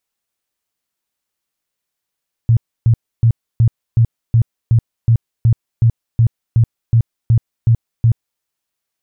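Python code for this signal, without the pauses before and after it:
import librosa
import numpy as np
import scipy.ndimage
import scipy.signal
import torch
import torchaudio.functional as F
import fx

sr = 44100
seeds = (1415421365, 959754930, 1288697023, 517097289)

y = fx.tone_burst(sr, hz=115.0, cycles=9, every_s=0.37, bursts=16, level_db=-7.0)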